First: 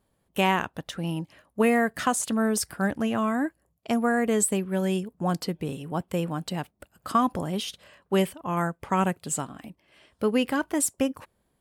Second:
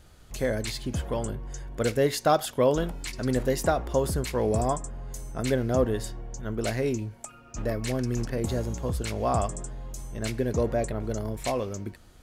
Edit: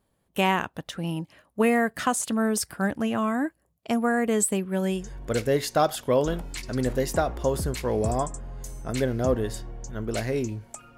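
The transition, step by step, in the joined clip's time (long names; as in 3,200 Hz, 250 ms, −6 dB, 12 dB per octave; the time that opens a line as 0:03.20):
first
0:05.02: continue with second from 0:01.52, crossfade 0.26 s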